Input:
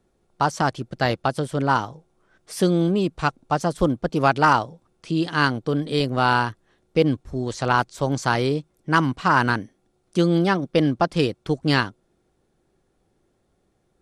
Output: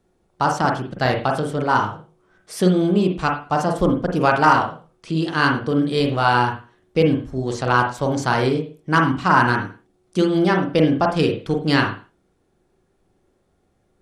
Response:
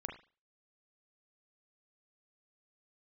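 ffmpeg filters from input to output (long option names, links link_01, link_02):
-filter_complex "[1:a]atrim=start_sample=2205,afade=type=out:start_time=0.33:duration=0.01,atrim=end_sample=14994,asetrate=41454,aresample=44100[link_01];[0:a][link_01]afir=irnorm=-1:irlink=0,volume=3.5dB"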